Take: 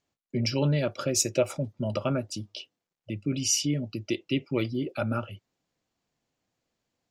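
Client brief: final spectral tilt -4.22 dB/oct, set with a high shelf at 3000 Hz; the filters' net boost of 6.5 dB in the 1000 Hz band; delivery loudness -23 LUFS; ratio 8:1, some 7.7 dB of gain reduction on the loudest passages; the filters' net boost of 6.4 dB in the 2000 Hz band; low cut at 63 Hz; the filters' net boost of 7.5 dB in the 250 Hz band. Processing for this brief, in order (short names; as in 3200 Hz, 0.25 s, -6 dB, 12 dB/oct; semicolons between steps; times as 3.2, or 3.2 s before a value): HPF 63 Hz; bell 250 Hz +8.5 dB; bell 1000 Hz +6 dB; bell 2000 Hz +4.5 dB; high shelf 3000 Hz +5.5 dB; compressor 8:1, threshold -23 dBFS; gain +6 dB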